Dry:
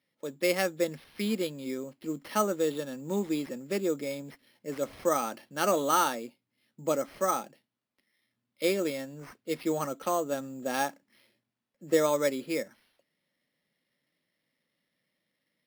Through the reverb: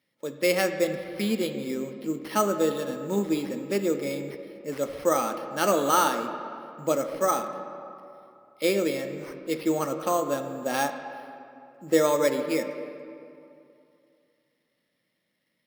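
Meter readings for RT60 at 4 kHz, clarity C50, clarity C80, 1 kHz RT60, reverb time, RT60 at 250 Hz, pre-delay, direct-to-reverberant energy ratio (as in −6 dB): 1.6 s, 8.0 dB, 9.0 dB, 2.7 s, 2.7 s, 2.6 s, 8 ms, 6.5 dB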